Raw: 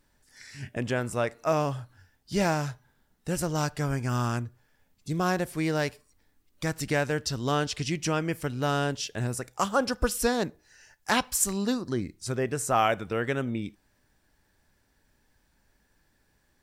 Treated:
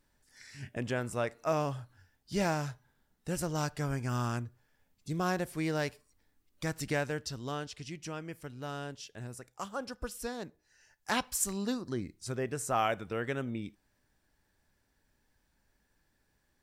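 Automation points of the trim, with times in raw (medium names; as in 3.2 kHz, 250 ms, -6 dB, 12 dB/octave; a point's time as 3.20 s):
6.92 s -5 dB
7.76 s -13 dB
10.43 s -13 dB
11.18 s -6 dB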